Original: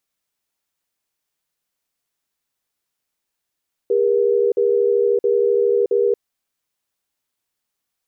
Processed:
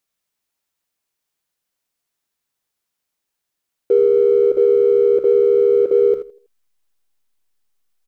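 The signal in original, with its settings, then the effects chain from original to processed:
cadence 404 Hz, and 477 Hz, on 0.62 s, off 0.05 s, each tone -16.5 dBFS 2.24 s
feedback delay 81 ms, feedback 33%, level -11 dB; in parallel at -3 dB: hysteresis with a dead band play -27.5 dBFS

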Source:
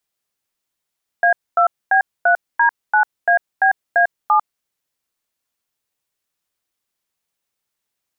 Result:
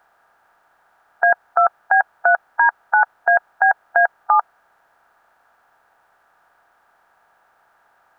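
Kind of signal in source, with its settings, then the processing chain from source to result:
DTMF "A2B3D9ABA7", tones 98 ms, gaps 243 ms, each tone -13 dBFS
spectral levelling over time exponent 0.6

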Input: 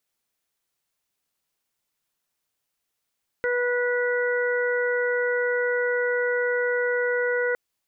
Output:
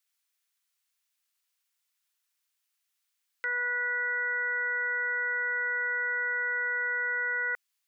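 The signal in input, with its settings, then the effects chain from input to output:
steady additive tone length 4.11 s, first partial 489 Hz, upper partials -15/-4/-7 dB, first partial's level -23 dB
high-pass 1.4 kHz 12 dB/octave

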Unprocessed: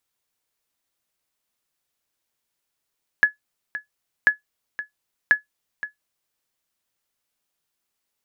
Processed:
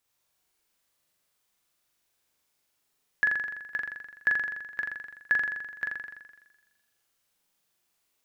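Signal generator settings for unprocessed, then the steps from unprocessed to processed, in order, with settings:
sonar ping 1.7 kHz, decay 0.13 s, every 1.04 s, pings 3, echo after 0.52 s, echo -14.5 dB -6 dBFS
peak limiter -15.5 dBFS; flutter echo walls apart 7.2 m, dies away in 1.2 s

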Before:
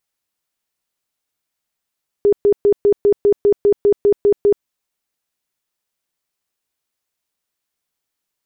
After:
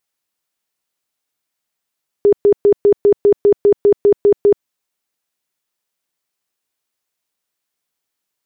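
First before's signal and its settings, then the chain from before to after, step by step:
tone bursts 408 Hz, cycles 31, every 0.20 s, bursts 12, -8.5 dBFS
bass shelf 84 Hz -9 dB; in parallel at -2 dB: level held to a coarse grid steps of 19 dB

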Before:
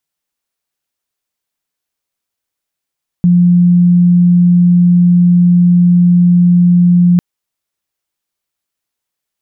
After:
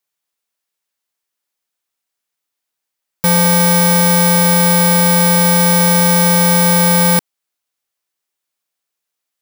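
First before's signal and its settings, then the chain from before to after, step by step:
tone sine 176 Hz -4.5 dBFS 3.95 s
bit-reversed sample order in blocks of 64 samples; bass shelf 220 Hz -10.5 dB

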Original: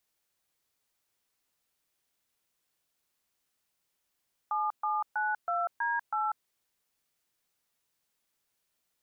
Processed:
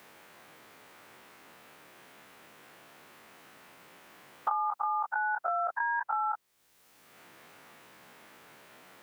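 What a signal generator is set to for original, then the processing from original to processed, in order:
DTMF "7792D8", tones 193 ms, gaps 130 ms, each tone -30 dBFS
every event in the spectrogram widened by 60 ms; three bands compressed up and down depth 100%

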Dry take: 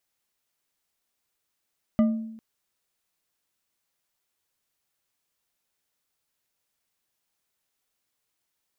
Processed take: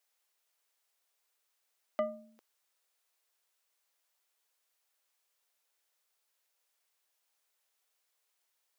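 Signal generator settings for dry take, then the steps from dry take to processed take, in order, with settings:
glass hit bar, length 0.40 s, lowest mode 223 Hz, decay 0.85 s, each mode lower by 9 dB, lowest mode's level -15 dB
high-pass 430 Hz 24 dB/octave

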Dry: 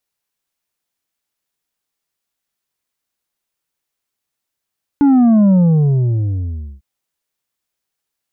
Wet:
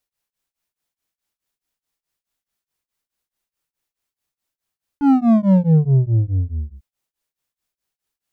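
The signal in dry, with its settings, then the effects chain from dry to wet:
sub drop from 290 Hz, over 1.80 s, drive 5.5 dB, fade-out 1.30 s, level -8 dB
hard clipper -10.5 dBFS; bass shelf 66 Hz +8.5 dB; tremolo of two beating tones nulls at 4.7 Hz

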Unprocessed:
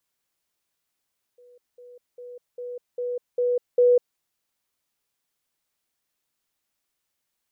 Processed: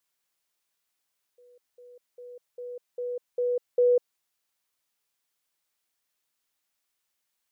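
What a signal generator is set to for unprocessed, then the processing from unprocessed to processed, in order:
level ladder 490 Hz -49.5 dBFS, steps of 6 dB, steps 7, 0.20 s 0.20 s
bass shelf 470 Hz -7.5 dB

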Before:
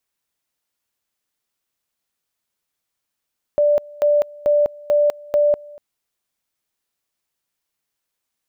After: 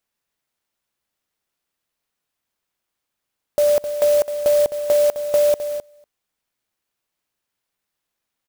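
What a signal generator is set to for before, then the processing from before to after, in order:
two-level tone 588 Hz -12 dBFS, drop 24 dB, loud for 0.20 s, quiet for 0.24 s, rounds 5
on a send: delay 260 ms -11 dB; on the sum: sampling jitter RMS 0.042 ms

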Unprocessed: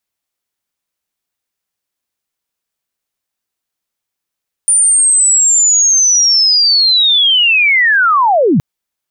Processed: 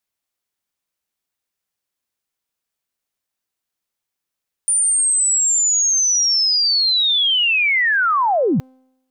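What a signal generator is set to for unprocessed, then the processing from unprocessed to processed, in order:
sweep linear 9.3 kHz -> 120 Hz -6.5 dBFS -> -7 dBFS 3.92 s
peak limiter -10.5 dBFS; feedback comb 260 Hz, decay 0.96 s, mix 30%

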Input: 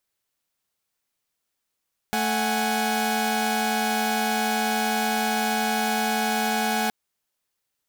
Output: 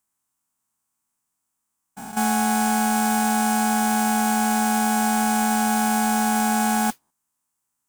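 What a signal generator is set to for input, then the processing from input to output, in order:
chord A3/F#5/G#5 saw, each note -24 dBFS 4.77 s
spectrogram pixelated in time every 200 ms; graphic EQ 125/250/500/1000/2000/4000/8000 Hz +3/+8/-10/+10/-4/-11/+10 dB; modulation noise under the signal 14 dB

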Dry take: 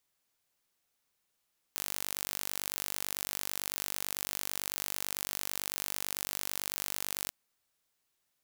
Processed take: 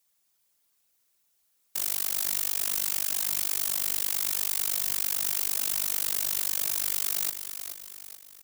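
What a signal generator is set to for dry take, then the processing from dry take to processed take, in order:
pulse train 49 per s, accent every 0, -8 dBFS 5.55 s
treble shelf 5 kHz +10 dB; whisper effect; on a send: feedback delay 428 ms, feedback 47%, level -9 dB

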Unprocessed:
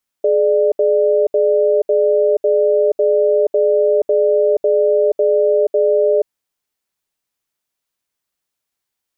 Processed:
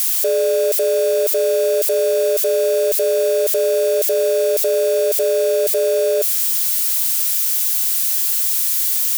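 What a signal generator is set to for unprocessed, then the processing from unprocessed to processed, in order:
cadence 422 Hz, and 595 Hz, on 0.48 s, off 0.07 s, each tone -13.5 dBFS 6.04 s
zero-crossing glitches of -14.5 dBFS; bass shelf 420 Hz -7 dB

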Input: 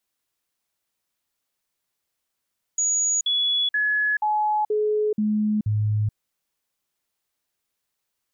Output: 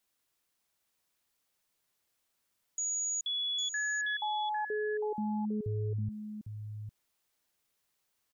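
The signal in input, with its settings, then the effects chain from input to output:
stepped sine 6.79 kHz down, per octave 1, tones 7, 0.43 s, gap 0.05 s -19 dBFS
peak limiter -30.5 dBFS; on a send: delay 803 ms -8 dB

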